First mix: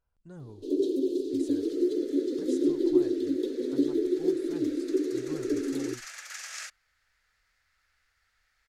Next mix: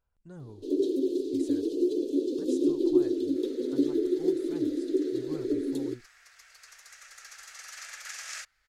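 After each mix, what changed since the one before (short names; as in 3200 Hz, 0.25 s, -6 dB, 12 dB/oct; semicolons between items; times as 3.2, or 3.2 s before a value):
second sound: entry +1.75 s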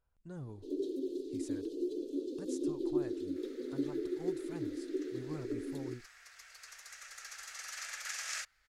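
first sound -10.0 dB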